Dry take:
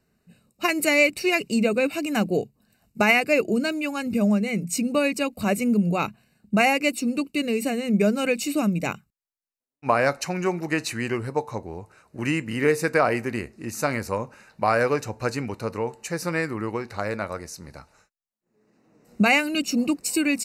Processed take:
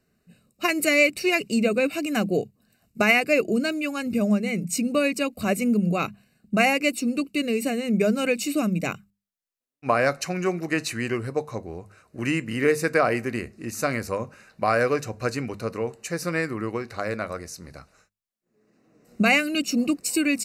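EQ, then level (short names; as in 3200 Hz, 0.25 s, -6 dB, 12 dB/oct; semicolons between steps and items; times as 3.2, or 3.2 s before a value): notches 50/100/150/200 Hz; notch 890 Hz, Q 5.2; 0.0 dB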